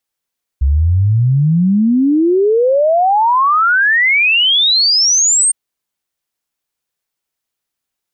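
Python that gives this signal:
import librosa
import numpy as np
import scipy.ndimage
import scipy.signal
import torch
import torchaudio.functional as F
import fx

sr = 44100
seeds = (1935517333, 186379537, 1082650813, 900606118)

y = fx.ess(sr, length_s=4.91, from_hz=65.0, to_hz=8800.0, level_db=-8.5)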